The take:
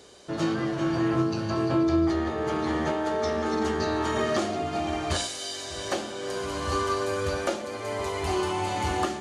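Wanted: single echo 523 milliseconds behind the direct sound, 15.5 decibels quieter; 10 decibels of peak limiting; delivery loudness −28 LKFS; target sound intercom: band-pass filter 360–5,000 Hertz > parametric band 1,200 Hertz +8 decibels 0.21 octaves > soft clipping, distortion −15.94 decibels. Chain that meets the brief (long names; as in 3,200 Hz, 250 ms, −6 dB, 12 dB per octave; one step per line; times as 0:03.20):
brickwall limiter −24 dBFS
band-pass filter 360–5,000 Hz
parametric band 1,200 Hz +8 dB 0.21 octaves
single-tap delay 523 ms −15.5 dB
soft clipping −28.5 dBFS
level +7 dB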